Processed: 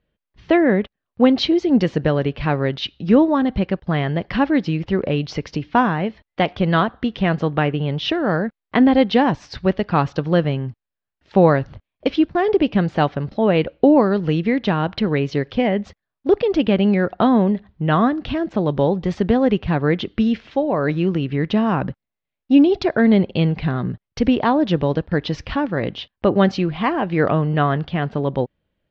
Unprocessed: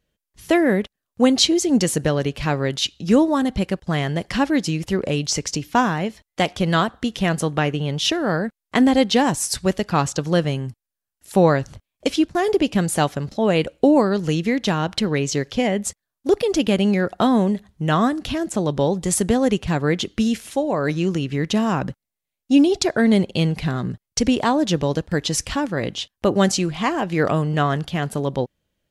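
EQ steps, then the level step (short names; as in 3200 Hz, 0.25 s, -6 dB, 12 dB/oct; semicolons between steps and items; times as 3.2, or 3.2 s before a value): Bessel low-pass 2600 Hz, order 8; +2.0 dB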